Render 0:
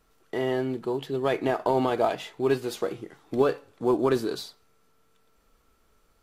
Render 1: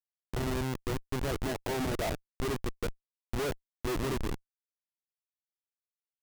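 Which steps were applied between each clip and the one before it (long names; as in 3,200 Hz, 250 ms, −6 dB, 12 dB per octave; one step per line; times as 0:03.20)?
comparator with hysteresis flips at −24.5 dBFS
level −2.5 dB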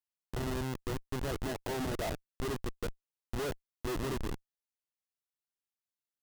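notch filter 2,300 Hz, Q 15
level −3 dB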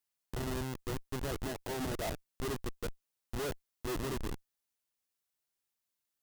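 high-shelf EQ 5,800 Hz +4 dB
brickwall limiter −34 dBFS, peak gain reduction 9 dB
level +4.5 dB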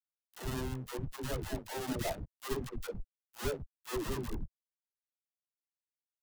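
spectral dynamics exaggerated over time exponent 1.5
all-pass dispersion lows, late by 118 ms, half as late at 400 Hz
dead-zone distortion −54.5 dBFS
level +4 dB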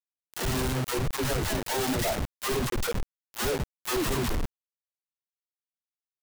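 in parallel at −0.5 dB: brickwall limiter −31.5 dBFS, peak gain reduction 10.5 dB
on the sum: log-companded quantiser 2 bits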